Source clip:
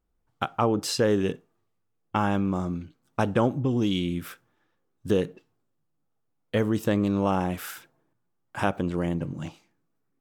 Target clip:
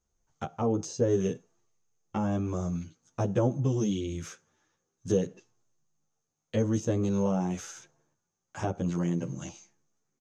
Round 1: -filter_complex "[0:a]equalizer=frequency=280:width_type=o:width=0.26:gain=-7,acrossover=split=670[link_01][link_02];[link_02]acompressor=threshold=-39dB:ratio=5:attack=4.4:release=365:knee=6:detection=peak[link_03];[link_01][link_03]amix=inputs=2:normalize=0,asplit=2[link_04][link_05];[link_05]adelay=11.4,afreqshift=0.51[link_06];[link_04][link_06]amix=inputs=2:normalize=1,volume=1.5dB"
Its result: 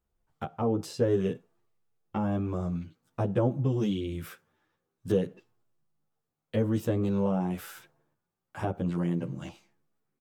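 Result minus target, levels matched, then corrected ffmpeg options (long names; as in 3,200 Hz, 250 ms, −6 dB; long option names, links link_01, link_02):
8,000 Hz band −9.5 dB
-filter_complex "[0:a]lowpass=frequency=6400:width_type=q:width=14,equalizer=frequency=280:width_type=o:width=0.26:gain=-7,acrossover=split=670[link_01][link_02];[link_02]acompressor=threshold=-39dB:ratio=5:attack=4.4:release=365:knee=6:detection=peak[link_03];[link_01][link_03]amix=inputs=2:normalize=0,asplit=2[link_04][link_05];[link_05]adelay=11.4,afreqshift=0.51[link_06];[link_04][link_06]amix=inputs=2:normalize=1,volume=1.5dB"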